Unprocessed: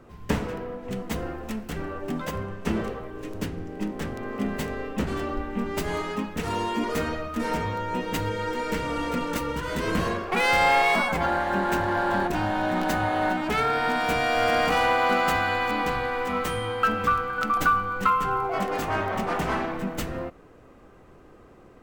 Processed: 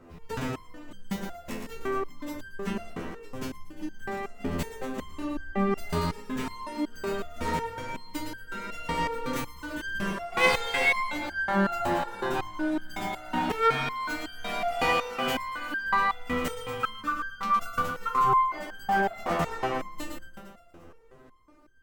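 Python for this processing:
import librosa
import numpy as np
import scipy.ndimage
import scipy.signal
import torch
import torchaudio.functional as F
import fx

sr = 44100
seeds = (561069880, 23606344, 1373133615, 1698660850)

y = fx.echo_feedback(x, sr, ms=116, feedback_pct=56, wet_db=-5.5)
y = fx.resonator_held(y, sr, hz=5.4, low_hz=85.0, high_hz=1600.0)
y = y * 10.0 ** (8.0 / 20.0)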